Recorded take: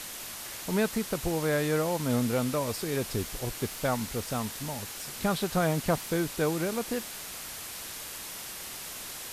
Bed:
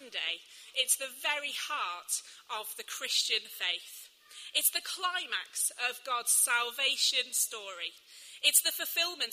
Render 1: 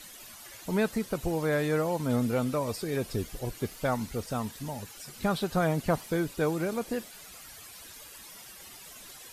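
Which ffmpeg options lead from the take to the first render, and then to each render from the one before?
-af "afftdn=nr=12:nf=-41"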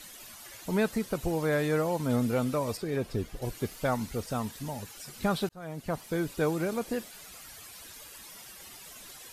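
-filter_complex "[0:a]asettb=1/sr,asplit=3[a][b][c];[a]atrim=end=2.774[d];[b]atrim=start=2.77:end=3.42,asetpts=PTS-STARTPTS,afade=t=in:d=0.004:c=qsin,afade=t=out:st=0.646:d=0.004:c=qsin,highshelf=f=4.1k:g=-9.5[e];[c]atrim=start=3.416[f];[d][e]acrossfade=d=0.004:c1=hsin:c2=qsin[g];[g][f]acrossfade=d=0.004:c1=qsin:c2=hsin,asplit=2[h][i];[h]atrim=end=5.49,asetpts=PTS-STARTPTS,afade=t=out:st=5.486:d=0.004:c=hsin[j];[i]atrim=start=5.49,asetpts=PTS-STARTPTS,afade=t=in:d=0.83[k];[j][k]concat=n=2:v=0:a=1"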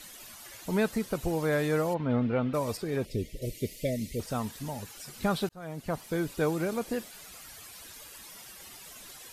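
-filter_complex "[0:a]asplit=3[a][b][c];[a]afade=t=out:st=1.93:d=0.02[d];[b]lowpass=f=3.1k:w=0.5412,lowpass=f=3.1k:w=1.3066,afade=t=in:st=1.93:d=0.02,afade=t=out:st=2.53:d=0.02[e];[c]afade=t=in:st=2.53:d=0.02[f];[d][e][f]amix=inputs=3:normalize=0,asettb=1/sr,asplit=3[g][h][i];[g]atrim=end=3.054[j];[h]atrim=start=3.05:end=4.2,asetpts=PTS-STARTPTS,afade=t=in:d=0.004:c=qsin,afade=t=out:st=1.146:d=0.004:c=qsin,asuperstop=centerf=1100:order=20:qfactor=0.89[k];[i]atrim=start=4.196[l];[j][k]acrossfade=d=0.004:c1=hsin:c2=qsin[m];[m][l]acrossfade=d=0.004:c1=qsin:c2=hsin"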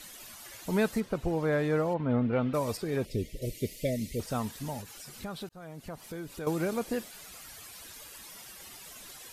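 -filter_complex "[0:a]asettb=1/sr,asplit=3[a][b][c];[a]atrim=end=1.004[d];[b]atrim=start=1:end=2.33,asetpts=PTS-STARTPTS,afade=t=in:d=0.004:c=qsin,afade=t=out:st=1.326:d=0.004:c=qsin,lowpass=f=2.3k:p=1[e];[c]atrim=start=2.326[f];[d][e]acrossfade=d=0.004:c1=hsin:c2=qsin[g];[g][f]acrossfade=d=0.004:c1=qsin:c2=hsin,asettb=1/sr,asplit=3[h][i][j];[h]atrim=end=4.814[k];[i]atrim=start=4.81:end=6.47,asetpts=PTS-STARTPTS,afade=t=in:d=0.004:c=qsin,afade=t=out:st=1.656:d=0.004:c=qsin,acompressor=threshold=-43dB:ratio=2:attack=3.2:release=140:knee=1:detection=peak[l];[j]atrim=start=6.466[m];[k][l]acrossfade=d=0.004:c1=hsin:c2=qsin[n];[n][m]acrossfade=d=0.004:c1=qsin:c2=hsin"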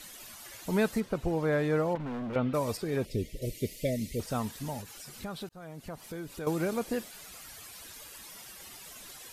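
-filter_complex "[0:a]asettb=1/sr,asplit=3[a][b][c];[a]atrim=end=1.954[d];[b]atrim=start=1.95:end=2.36,asetpts=PTS-STARTPTS,afade=t=in:d=0.004:c=qsin,afade=t=out:st=0.406:d=0.004:c=qsin,asoftclip=type=hard:threshold=-34dB[e];[c]atrim=start=2.356[f];[d][e]acrossfade=d=0.004:c1=hsin:c2=qsin[g];[g][f]acrossfade=d=0.004:c1=qsin:c2=hsin"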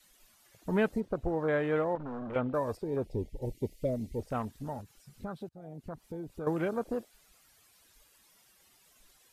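-af "afwtdn=0.00891,adynamicequalizer=threshold=0.00562:dfrequency=170:dqfactor=1.1:tfrequency=170:tqfactor=1.1:attack=5:release=100:ratio=0.375:range=3.5:mode=cutabove:tftype=bell"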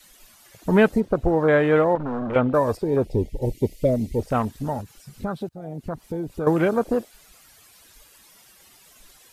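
-af "volume=11.5dB"

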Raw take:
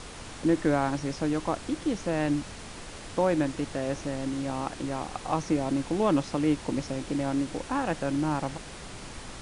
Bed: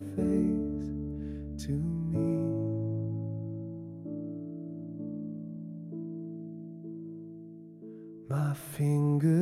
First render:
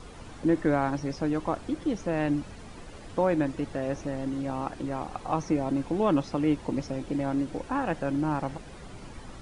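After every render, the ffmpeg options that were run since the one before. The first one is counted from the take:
-af "afftdn=nr=10:nf=-43"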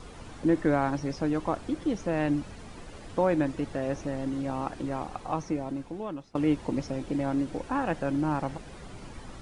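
-filter_complex "[0:a]asplit=2[a][b];[a]atrim=end=6.35,asetpts=PTS-STARTPTS,afade=t=out:st=4.96:d=1.39:silence=0.0841395[c];[b]atrim=start=6.35,asetpts=PTS-STARTPTS,afade=t=in:d=0.004:c=hsin:silence=0.0841395[d];[c][d]concat=n=2:v=0:a=1"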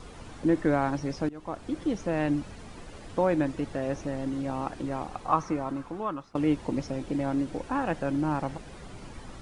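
-filter_complex "[0:a]asettb=1/sr,asplit=3[a][b][c];[a]atrim=end=5.284[d];[b]atrim=start=5.28:end=6.33,asetpts=PTS-STARTPTS,afade=t=in:d=0.004:c=qsin,afade=t=out:st=1.046:d=0.004:c=qsin,equalizer=f=1.2k:t=o:w=0.81:g=12.5[e];[c]atrim=start=6.326[f];[d][e]acrossfade=d=0.004:c1=hsin:c2=qsin[g];[g][f]acrossfade=d=0.004:c1=qsin:c2=hsin,asplit=2[h][i];[h]atrim=end=1.29,asetpts=PTS-STARTPTS,afade=t=out:st=1.286:d=0.004:c=hsin:silence=0.0841395[j];[i]atrim=start=1.29,asetpts=PTS-STARTPTS,afade=t=in:d=0.5:silence=0.0841395[k];[j][k]concat=n=2:v=0:a=1"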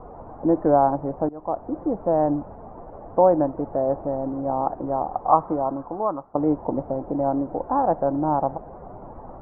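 -af "lowpass=f=1.1k:w=0.5412,lowpass=f=1.1k:w=1.3066,equalizer=f=720:w=1:g=13"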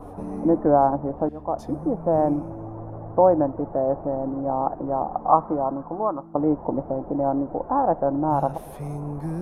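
-filter_complex "[1:a]volume=-5dB[a];[0:a][a]amix=inputs=2:normalize=0"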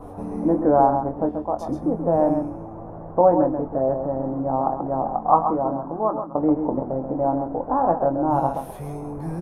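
-filter_complex "[0:a]asplit=2[a][b];[b]adelay=23,volume=-7.5dB[c];[a][c]amix=inputs=2:normalize=0,asplit=2[d][e];[e]aecho=0:1:133:0.422[f];[d][f]amix=inputs=2:normalize=0"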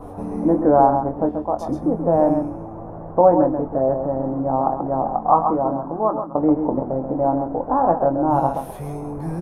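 -af "volume=2.5dB,alimiter=limit=-2dB:level=0:latency=1"

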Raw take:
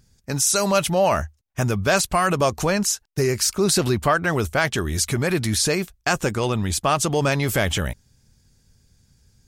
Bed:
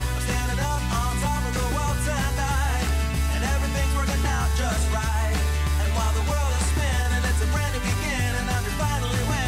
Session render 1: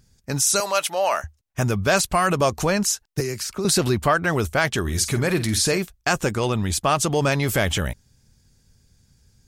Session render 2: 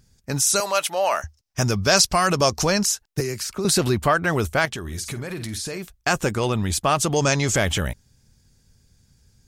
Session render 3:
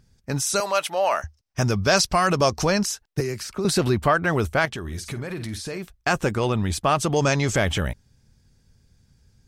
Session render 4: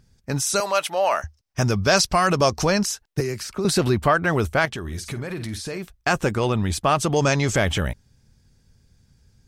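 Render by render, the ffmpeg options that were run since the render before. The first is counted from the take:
-filter_complex "[0:a]asettb=1/sr,asplit=3[a][b][c];[a]atrim=end=0.604[d];[b]atrim=start=0.6:end=1.24,asetpts=PTS-STARTPTS,afade=t=in:d=0.004:c=qsin,afade=t=out:st=0.636:d=0.004:c=qsin,highpass=630[e];[c]atrim=start=1.236[f];[d][e]acrossfade=d=0.004:c1=hsin:c2=qsin[g];[g][f]acrossfade=d=0.004:c1=qsin:c2=hsin,asettb=1/sr,asplit=3[h][i][j];[h]atrim=end=3.204[k];[i]atrim=start=3.2:end=3.65,asetpts=PTS-STARTPTS,afade=t=in:d=0.004:c=qsin,afade=t=out:st=0.446:d=0.004:c=qsin,acrossover=split=99|220|3100[l][m][n][o];[l]acompressor=threshold=-50dB:ratio=3[p];[m]acompressor=threshold=-34dB:ratio=3[q];[n]acompressor=threshold=-29dB:ratio=3[r];[o]acompressor=threshold=-32dB:ratio=3[s];[p][q][r][s]amix=inputs=4:normalize=0[t];[j]atrim=start=3.646[u];[k][t]acrossfade=d=0.004:c1=hsin:c2=qsin[v];[v][u]acrossfade=d=0.004:c1=qsin:c2=hsin,asettb=1/sr,asplit=3[w][x][y];[w]atrim=end=4.804[z];[x]atrim=start=4.8:end=5.78,asetpts=PTS-STARTPTS,afade=t=in:d=0.004:c=qsin,afade=t=out:st=0.976:d=0.004:c=qsin,asplit=2[aa][ab];[ab]adelay=49,volume=-12dB[ac];[aa][ac]amix=inputs=2:normalize=0,atrim=end_sample=43218[ad];[y]atrim=start=5.776[ae];[z][ad]acrossfade=d=0.004:c1=hsin:c2=qsin[af];[af][ae]acrossfade=d=0.004:c1=qsin:c2=hsin"
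-filter_complex "[0:a]asettb=1/sr,asplit=3[a][b][c];[a]atrim=end=1.224[d];[b]atrim=start=1.22:end=2.86,asetpts=PTS-STARTPTS,afade=t=in:d=0.004:c=qsin,afade=t=out:st=1.636:d=0.004:c=qsin,equalizer=f=5.3k:t=o:w=0.58:g=12.5[e];[c]atrim=start=2.856[f];[d][e]acrossfade=d=0.004:c1=hsin:c2=qsin[g];[g][f]acrossfade=d=0.004:c1=qsin:c2=hsin,asettb=1/sr,asplit=3[h][i][j];[h]atrim=end=4.654[k];[i]atrim=start=4.65:end=5.95,asetpts=PTS-STARTPTS,afade=t=in:d=0.004:c=qsin,afade=t=out:st=1.296:d=0.004:c=qsin,acompressor=threshold=-27dB:ratio=6:attack=3.2:release=140:knee=1:detection=peak[l];[j]atrim=start=5.946[m];[k][l]acrossfade=d=0.004:c1=hsin:c2=qsin[n];[n][m]acrossfade=d=0.004:c1=qsin:c2=hsin,asettb=1/sr,asplit=3[o][p][q];[o]atrim=end=7.164[r];[p]atrim=start=7.16:end=7.56,asetpts=PTS-STARTPTS,afade=t=in:d=0.004:c=qsin,afade=t=out:st=0.396:d=0.004:c=qsin,lowpass=f=6.7k:t=q:w=4.7[s];[q]atrim=start=7.556[t];[r][s]acrossfade=d=0.004:c1=hsin:c2=qsin[u];[u][t]acrossfade=d=0.004:c1=qsin:c2=hsin"
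-af "highshelf=f=4.8k:g=-8,bandreject=f=6.9k:w=23"
-af "volume=1dB"

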